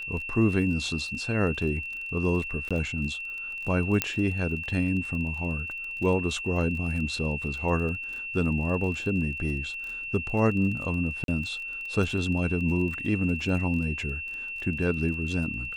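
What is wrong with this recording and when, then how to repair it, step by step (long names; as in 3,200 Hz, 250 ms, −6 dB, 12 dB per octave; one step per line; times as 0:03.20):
surface crackle 26 per second −35 dBFS
whistle 2,700 Hz −33 dBFS
0:02.69–0:02.71: drop-out 16 ms
0:04.02: click −6 dBFS
0:11.24–0:11.28: drop-out 42 ms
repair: click removal
notch filter 2,700 Hz, Q 30
repair the gap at 0:02.69, 16 ms
repair the gap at 0:11.24, 42 ms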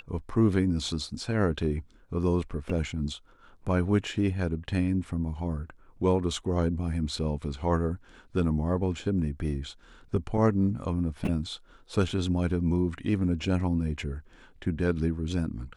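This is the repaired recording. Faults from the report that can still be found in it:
none of them is left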